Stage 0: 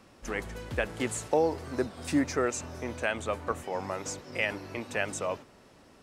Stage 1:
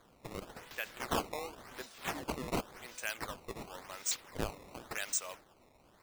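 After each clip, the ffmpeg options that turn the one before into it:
ffmpeg -i in.wav -af "aderivative,acrusher=samples=16:mix=1:aa=0.000001:lfo=1:lforange=25.6:lforate=0.92,volume=5dB" out.wav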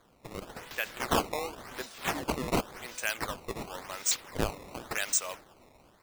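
ffmpeg -i in.wav -af "dynaudnorm=framelen=290:gausssize=3:maxgain=6.5dB" out.wav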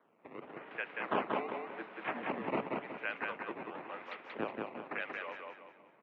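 ffmpeg -i in.wav -filter_complex "[0:a]asplit=2[link_01][link_02];[link_02]aecho=0:1:184|368|552|736|920:0.708|0.269|0.102|0.0388|0.0148[link_03];[link_01][link_03]amix=inputs=2:normalize=0,highpass=frequency=260:width_type=q:width=0.5412,highpass=frequency=260:width_type=q:width=1.307,lowpass=frequency=2700:width_type=q:width=0.5176,lowpass=frequency=2700:width_type=q:width=0.7071,lowpass=frequency=2700:width_type=q:width=1.932,afreqshift=-50,volume=-5dB" out.wav

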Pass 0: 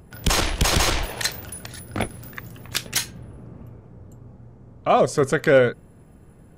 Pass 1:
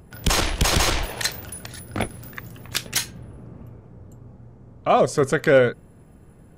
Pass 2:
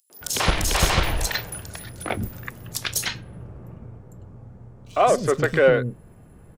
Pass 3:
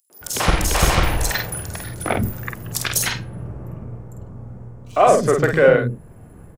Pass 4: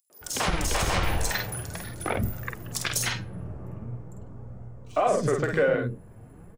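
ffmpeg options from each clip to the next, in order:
ffmpeg -i in.wav -af anull out.wav
ffmpeg -i in.wav -filter_complex "[0:a]asplit=2[link_01][link_02];[link_02]asoftclip=type=hard:threshold=-19.5dB,volume=-8dB[link_03];[link_01][link_03]amix=inputs=2:normalize=0,acrossover=split=280|4600[link_04][link_05][link_06];[link_05]adelay=100[link_07];[link_04]adelay=210[link_08];[link_08][link_07][link_06]amix=inputs=3:normalize=0,volume=-1.5dB" out.wav
ffmpeg -i in.wav -filter_complex "[0:a]equalizer=frequency=3700:width_type=o:width=1.4:gain=-5,asplit=2[link_01][link_02];[link_02]adelay=49,volume=-5dB[link_03];[link_01][link_03]amix=inputs=2:normalize=0,dynaudnorm=framelen=230:gausssize=3:maxgain=6dB" out.wav
ffmpeg -i in.wav -af "equalizer=frequency=12000:width=4.8:gain=-14,alimiter=limit=-9dB:level=0:latency=1:release=129,flanger=delay=1.4:depth=9.9:regen=54:speed=0.43:shape=sinusoidal,volume=-1dB" out.wav

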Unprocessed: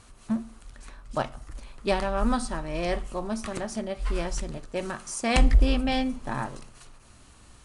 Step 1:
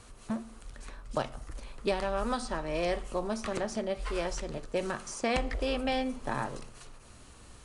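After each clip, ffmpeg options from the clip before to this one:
ffmpeg -i in.wav -filter_complex "[0:a]equalizer=frequency=470:width_type=o:width=0.51:gain=5,acrossover=split=350|2500|7300[link_01][link_02][link_03][link_04];[link_01]acompressor=threshold=-36dB:ratio=4[link_05];[link_02]acompressor=threshold=-29dB:ratio=4[link_06];[link_03]acompressor=threshold=-40dB:ratio=4[link_07];[link_04]acompressor=threshold=-57dB:ratio=4[link_08];[link_05][link_06][link_07][link_08]amix=inputs=4:normalize=0" out.wav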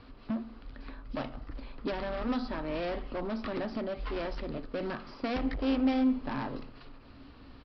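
ffmpeg -i in.wav -af "highshelf=frequency=4200:gain=-5.5,aresample=11025,asoftclip=type=hard:threshold=-31.5dB,aresample=44100,equalizer=frequency=270:width=5.6:gain=14" out.wav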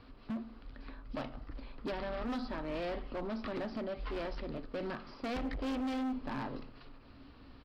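ffmpeg -i in.wav -af "asoftclip=type=hard:threshold=-29.5dB,volume=-3.5dB" out.wav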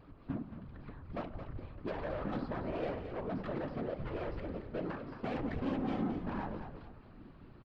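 ffmpeg -i in.wav -filter_complex "[0:a]afftfilt=real='hypot(re,im)*cos(2*PI*random(0))':imag='hypot(re,im)*sin(2*PI*random(1))':win_size=512:overlap=0.75,adynamicsmooth=sensitivity=5.5:basefreq=2400,asplit=5[link_01][link_02][link_03][link_04][link_05];[link_02]adelay=220,afreqshift=-44,volume=-9dB[link_06];[link_03]adelay=440,afreqshift=-88,volume=-18.1dB[link_07];[link_04]adelay=660,afreqshift=-132,volume=-27.2dB[link_08];[link_05]adelay=880,afreqshift=-176,volume=-36.4dB[link_09];[link_01][link_06][link_07][link_08][link_09]amix=inputs=5:normalize=0,volume=6dB" out.wav

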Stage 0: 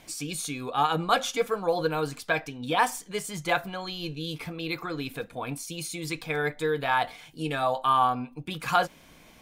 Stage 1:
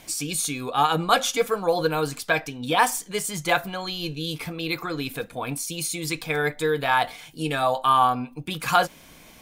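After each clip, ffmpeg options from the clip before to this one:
ffmpeg -i in.wav -af "highshelf=frequency=5600:gain=6.5,volume=3.5dB" out.wav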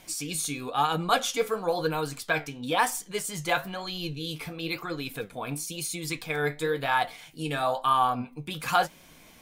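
ffmpeg -i in.wav -af "flanger=delay=5.3:depth=8.7:regen=67:speed=1:shape=sinusoidal" out.wav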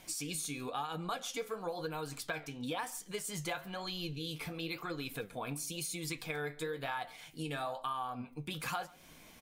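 ffmpeg -i in.wav -filter_complex "[0:a]acompressor=threshold=-32dB:ratio=6,asplit=2[link_01][link_02];[link_02]adelay=139.9,volume=-23dB,highshelf=frequency=4000:gain=-3.15[link_03];[link_01][link_03]amix=inputs=2:normalize=0,volume=-3.5dB" out.wav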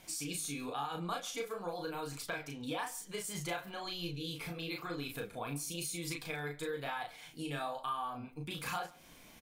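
ffmpeg -i in.wav -filter_complex "[0:a]asplit=2[link_01][link_02];[link_02]adelay=35,volume=-3.5dB[link_03];[link_01][link_03]amix=inputs=2:normalize=0,volume=-2dB" out.wav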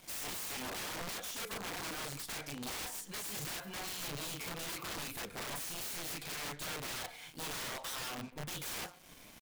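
ffmpeg -i in.wav -af "aeval=exprs='(mod(75*val(0)+1,2)-1)/75':channel_layout=same,acrusher=bits=8:mix=0:aa=0.5,volume=1.5dB" out.wav

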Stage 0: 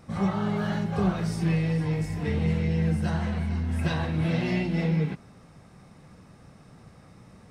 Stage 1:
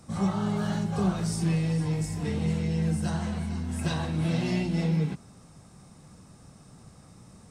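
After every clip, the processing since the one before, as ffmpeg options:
ffmpeg -i in.wav -filter_complex "[0:a]equalizer=frequency=500:width_type=o:width=1:gain=-3,equalizer=frequency=2000:width_type=o:width=1:gain=-6,equalizer=frequency=8000:width_type=o:width=1:gain=10,acrossover=split=120[link_01][link_02];[link_01]alimiter=level_in=10.5dB:limit=-24dB:level=0:latency=1,volume=-10.5dB[link_03];[link_03][link_02]amix=inputs=2:normalize=0" out.wav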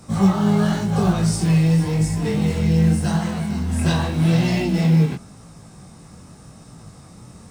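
ffmpeg -i in.wav -filter_complex "[0:a]asplit=2[link_01][link_02];[link_02]acrusher=bits=5:mode=log:mix=0:aa=0.000001,volume=-6dB[link_03];[link_01][link_03]amix=inputs=2:normalize=0,flanger=delay=17.5:depth=6.9:speed=0.9,volume=8dB" out.wav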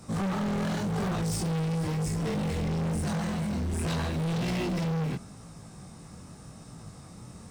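ffmpeg -i in.wav -af "volume=24dB,asoftclip=hard,volume=-24dB,volume=-3.5dB" out.wav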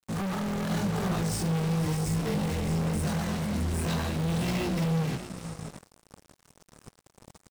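ffmpeg -i in.wav -filter_complex "[0:a]asplit=2[link_01][link_02];[link_02]aecho=0:1:611:0.282[link_03];[link_01][link_03]amix=inputs=2:normalize=0,acrusher=bits=5:mix=0:aa=0.5" out.wav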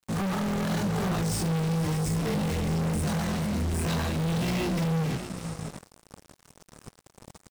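ffmpeg -i in.wav -af "asoftclip=type=tanh:threshold=-27.5dB,volume=4dB" out.wav

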